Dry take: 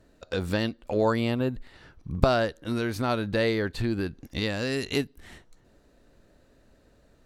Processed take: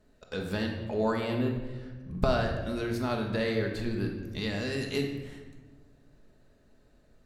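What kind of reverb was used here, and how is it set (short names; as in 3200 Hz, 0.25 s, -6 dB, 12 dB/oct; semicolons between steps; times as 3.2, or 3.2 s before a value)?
shoebox room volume 900 m³, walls mixed, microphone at 1.4 m; gain -6.5 dB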